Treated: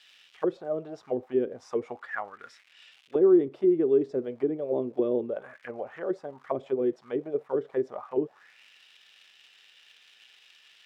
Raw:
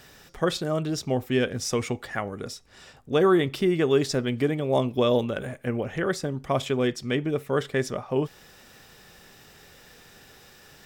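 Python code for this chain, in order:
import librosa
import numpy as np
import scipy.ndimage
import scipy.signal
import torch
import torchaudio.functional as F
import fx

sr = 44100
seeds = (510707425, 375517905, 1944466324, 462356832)

y = fx.dmg_crackle(x, sr, seeds[0], per_s=270.0, level_db=-35.0)
y = fx.auto_wah(y, sr, base_hz=360.0, top_hz=3300.0, q=3.3, full_db=-20.5, direction='down')
y = y * librosa.db_to_amplitude(2.0)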